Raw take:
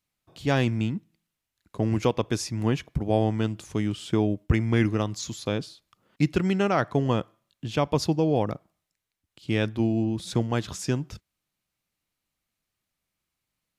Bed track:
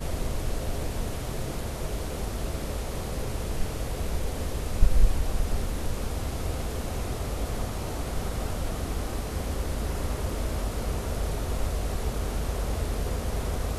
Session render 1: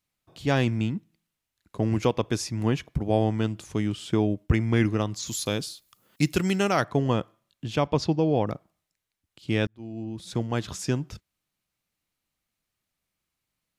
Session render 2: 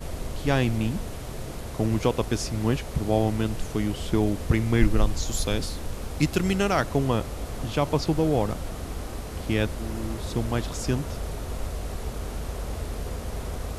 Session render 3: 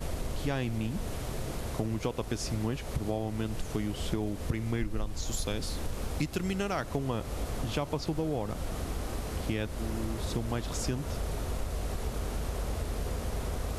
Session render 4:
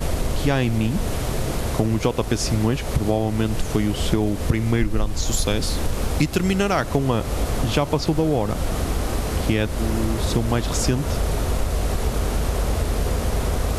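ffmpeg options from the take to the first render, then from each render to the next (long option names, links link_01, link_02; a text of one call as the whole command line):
ffmpeg -i in.wav -filter_complex "[0:a]asplit=3[link_01][link_02][link_03];[link_01]afade=type=out:start_time=5.26:duration=0.02[link_04];[link_02]aemphasis=mode=production:type=75fm,afade=type=in:start_time=5.26:duration=0.02,afade=type=out:start_time=6.83:duration=0.02[link_05];[link_03]afade=type=in:start_time=6.83:duration=0.02[link_06];[link_04][link_05][link_06]amix=inputs=3:normalize=0,asettb=1/sr,asplit=3[link_07][link_08][link_09];[link_07]atrim=end=7.874[link_10];[link_08]atrim=start=7.87:end=8.47,asetpts=PTS-STARTPTS,afade=type=in:duration=0.004:curve=qsin,afade=type=out:start_time=0.596:duration=0.004:curve=qsin,lowpass=5500[link_11];[link_09]atrim=start=8.466[link_12];[link_10][link_11]acrossfade=duration=0.004:curve1=hsin:curve2=qsin[link_13];[link_13][link_12]acrossfade=duration=0.004:curve1=qsin:curve2=hsin,asplit=2[link_14][link_15];[link_14]atrim=end=9.67,asetpts=PTS-STARTPTS,afade=type=out:start_time=9.666:duration=0.004:curve=hsin[link_16];[link_15]atrim=start=9.67,asetpts=PTS-STARTPTS,afade=type=in:duration=1.03[link_17];[link_16][link_17]concat=n=2:v=0:a=1" out.wav
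ffmpeg -i in.wav -i bed.wav -filter_complex "[1:a]volume=-3dB[link_01];[0:a][link_01]amix=inputs=2:normalize=0" out.wav
ffmpeg -i in.wav -af "acompressor=threshold=-28dB:ratio=6" out.wav
ffmpeg -i in.wav -af "volume=11.5dB" out.wav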